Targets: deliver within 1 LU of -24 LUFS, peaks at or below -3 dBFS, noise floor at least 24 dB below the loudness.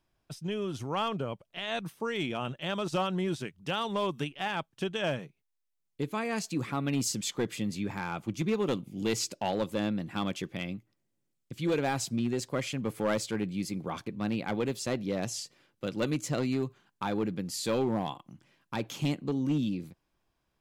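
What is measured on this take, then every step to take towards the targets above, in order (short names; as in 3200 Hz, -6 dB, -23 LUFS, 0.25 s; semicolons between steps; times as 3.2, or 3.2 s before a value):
clipped 0.8%; flat tops at -22.5 dBFS; loudness -33.0 LUFS; peak -22.5 dBFS; loudness target -24.0 LUFS
-> clip repair -22.5 dBFS; gain +9 dB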